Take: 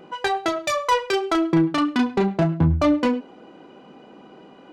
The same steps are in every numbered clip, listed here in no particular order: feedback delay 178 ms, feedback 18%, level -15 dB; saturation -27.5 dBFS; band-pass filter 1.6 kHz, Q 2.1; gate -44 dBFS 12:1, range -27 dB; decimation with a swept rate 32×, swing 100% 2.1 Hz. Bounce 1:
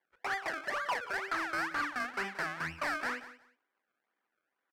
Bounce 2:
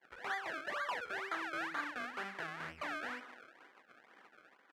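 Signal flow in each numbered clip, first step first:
decimation with a swept rate > band-pass filter > gate > saturation > feedback delay; saturation > feedback delay > gate > decimation with a swept rate > band-pass filter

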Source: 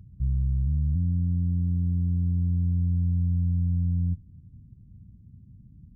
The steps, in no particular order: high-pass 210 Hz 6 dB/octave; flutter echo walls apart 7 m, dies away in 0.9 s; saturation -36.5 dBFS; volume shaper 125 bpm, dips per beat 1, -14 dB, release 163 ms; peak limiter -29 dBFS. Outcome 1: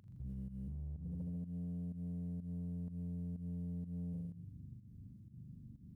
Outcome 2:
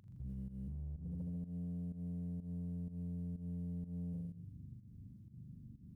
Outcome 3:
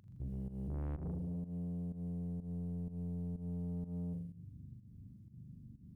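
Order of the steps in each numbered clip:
flutter echo > peak limiter > volume shaper > high-pass > saturation; flutter echo > peak limiter > high-pass > saturation > volume shaper; high-pass > peak limiter > flutter echo > saturation > volume shaper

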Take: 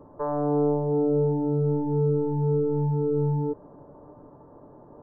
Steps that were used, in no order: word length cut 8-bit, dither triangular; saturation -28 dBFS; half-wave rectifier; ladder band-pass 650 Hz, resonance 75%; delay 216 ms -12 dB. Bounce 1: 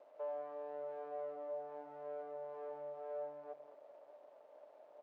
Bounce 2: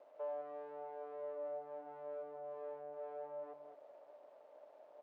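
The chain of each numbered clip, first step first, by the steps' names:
saturation > word length cut > delay > half-wave rectifier > ladder band-pass; word length cut > half-wave rectifier > delay > saturation > ladder band-pass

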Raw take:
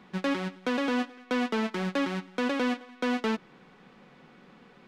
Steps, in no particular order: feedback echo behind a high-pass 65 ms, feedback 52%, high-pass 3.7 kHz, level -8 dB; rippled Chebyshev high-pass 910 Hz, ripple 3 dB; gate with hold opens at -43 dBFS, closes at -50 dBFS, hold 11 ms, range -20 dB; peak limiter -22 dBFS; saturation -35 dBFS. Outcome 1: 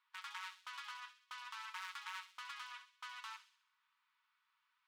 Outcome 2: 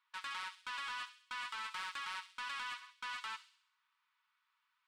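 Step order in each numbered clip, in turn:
peak limiter > saturation > rippled Chebyshev high-pass > gate with hold > feedback echo behind a high-pass; peak limiter > rippled Chebyshev high-pass > gate with hold > saturation > feedback echo behind a high-pass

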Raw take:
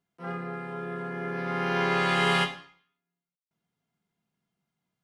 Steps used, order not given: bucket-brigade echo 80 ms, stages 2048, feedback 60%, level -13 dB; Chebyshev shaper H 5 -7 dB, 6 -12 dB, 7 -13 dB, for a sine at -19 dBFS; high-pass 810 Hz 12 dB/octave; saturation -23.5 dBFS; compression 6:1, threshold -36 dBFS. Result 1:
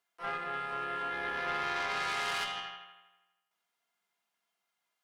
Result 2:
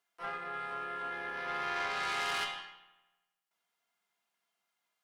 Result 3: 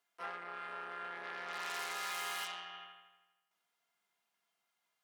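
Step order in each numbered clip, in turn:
bucket-brigade echo > saturation > high-pass > compression > Chebyshev shaper; saturation > compression > high-pass > Chebyshev shaper > bucket-brigade echo; bucket-brigade echo > Chebyshev shaper > compression > high-pass > saturation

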